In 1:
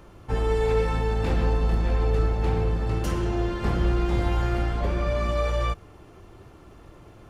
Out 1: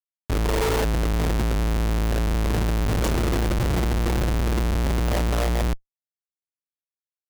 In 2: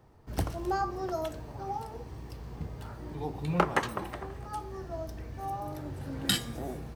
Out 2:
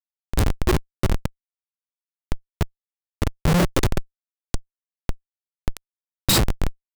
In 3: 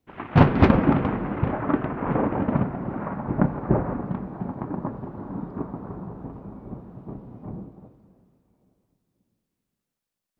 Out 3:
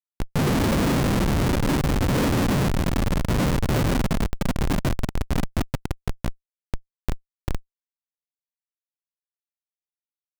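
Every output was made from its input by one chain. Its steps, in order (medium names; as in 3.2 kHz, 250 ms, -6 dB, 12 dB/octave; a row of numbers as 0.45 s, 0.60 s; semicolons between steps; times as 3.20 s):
FFT band-reject 610–3500 Hz; treble shelf 2.8 kHz +10 dB; Schmitt trigger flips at -28.5 dBFS; normalise loudness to -24 LUFS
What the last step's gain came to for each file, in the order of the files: +3.0 dB, +19.0 dB, +6.0 dB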